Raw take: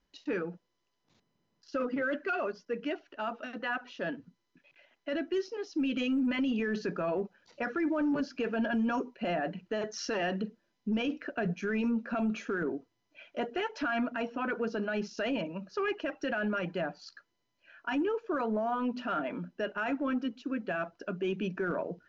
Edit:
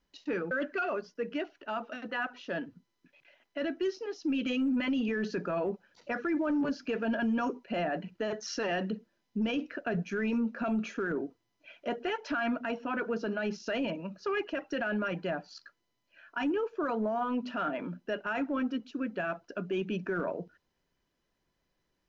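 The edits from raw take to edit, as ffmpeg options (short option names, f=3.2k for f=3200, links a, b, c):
-filter_complex "[0:a]asplit=2[a][b];[a]atrim=end=0.512[c];[b]atrim=start=2.018[d];[c][d]acrossfade=d=0.004:c1=hsin:c2=hsin"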